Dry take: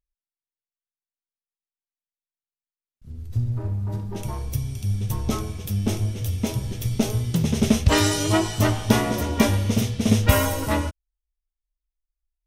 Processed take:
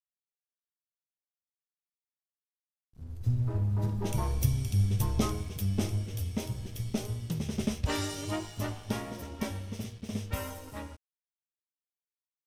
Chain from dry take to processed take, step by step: Doppler pass-by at 4.32 s, 10 m/s, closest 8.6 m; crossover distortion -56.5 dBFS

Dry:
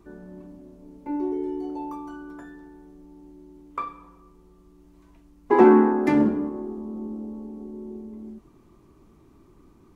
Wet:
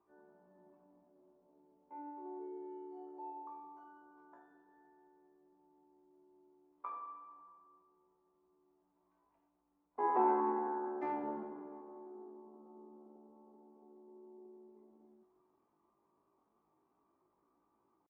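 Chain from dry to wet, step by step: differentiator; tempo 0.55×; resonant low-pass 840 Hz, resonance Q 2; spring tank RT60 1.5 s, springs 38 ms, chirp 45 ms, DRR 8 dB; trim +2 dB

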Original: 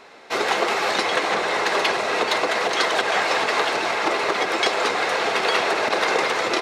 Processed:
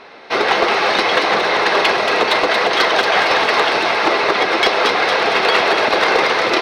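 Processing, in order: Savitzky-Golay filter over 15 samples; one-sided clip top -13.5 dBFS; feedback echo behind a high-pass 229 ms, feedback 58%, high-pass 3.5 kHz, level -4 dB; trim +6.5 dB

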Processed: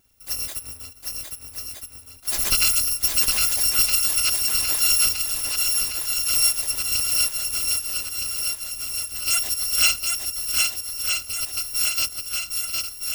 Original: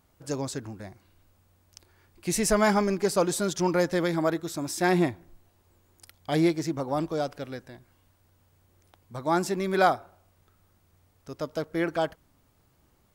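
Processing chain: bit-reversed sample order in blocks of 256 samples; shuffle delay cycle 1266 ms, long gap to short 1.5:1, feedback 57%, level -3.5 dB; trim +2.5 dB

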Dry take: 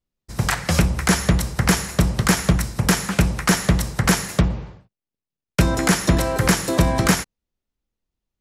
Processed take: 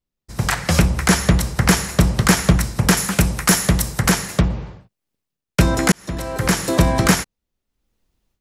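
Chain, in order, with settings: 2.97–4.09 s: treble shelf 7.5 kHz +10.5 dB; level rider gain up to 14.5 dB; 5.92–6.71 s: fade in; trim -1 dB

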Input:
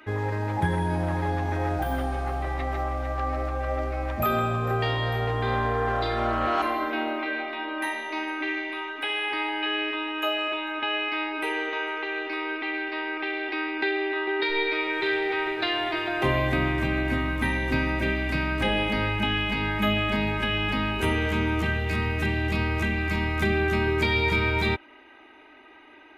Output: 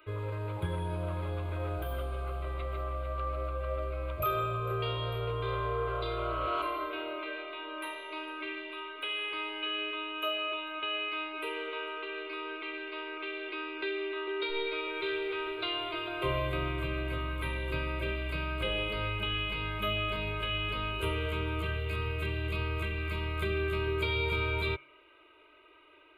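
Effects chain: static phaser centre 1.2 kHz, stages 8; de-hum 137.6 Hz, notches 17; trim -4.5 dB

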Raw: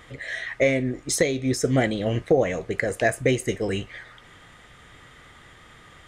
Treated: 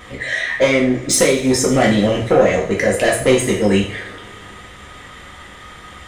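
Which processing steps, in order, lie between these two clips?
saturation -18 dBFS, distortion -12 dB; two-slope reverb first 0.46 s, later 2.8 s, from -22 dB, DRR -3 dB; trim +7 dB

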